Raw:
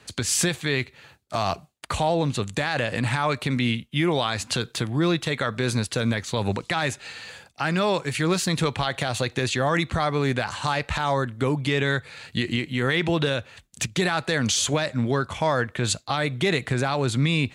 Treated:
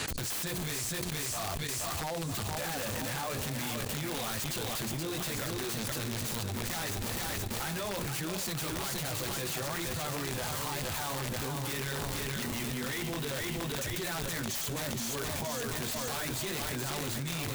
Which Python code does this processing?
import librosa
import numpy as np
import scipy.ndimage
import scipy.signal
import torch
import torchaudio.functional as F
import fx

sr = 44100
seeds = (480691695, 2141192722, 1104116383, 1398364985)

p1 = fx.chorus_voices(x, sr, voices=2, hz=1.2, base_ms=11, depth_ms=3.0, mix_pct=55)
p2 = fx.high_shelf(p1, sr, hz=5100.0, db=-3.0)
p3 = fx.hum_notches(p2, sr, base_hz=60, count=8)
p4 = fx.schmitt(p3, sr, flips_db=-39.5)
p5 = p3 + F.gain(torch.from_numpy(p4), -4.0).numpy()
p6 = fx.bass_treble(p5, sr, bass_db=1, treble_db=11)
p7 = p6 + fx.echo_feedback(p6, sr, ms=473, feedback_pct=55, wet_db=-6, dry=0)
p8 = fx.level_steps(p7, sr, step_db=16)
p9 = (np.mod(10.0 ** (25.0 / 20.0) * p8 + 1.0, 2.0) - 1.0) / 10.0 ** (25.0 / 20.0)
p10 = fx.env_flatten(p9, sr, amount_pct=100)
y = F.gain(torch.from_numpy(p10), -5.5).numpy()